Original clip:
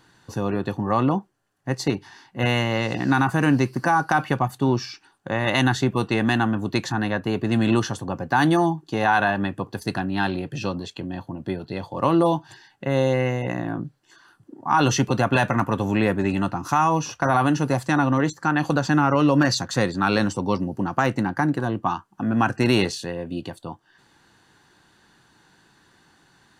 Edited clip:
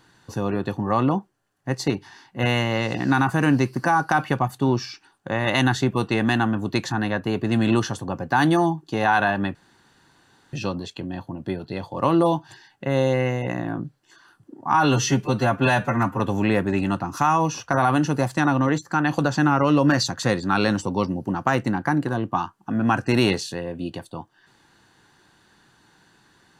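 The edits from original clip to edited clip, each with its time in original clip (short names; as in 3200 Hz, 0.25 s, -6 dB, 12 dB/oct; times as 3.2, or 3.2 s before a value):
9.55–10.53 room tone
14.74–15.71 stretch 1.5×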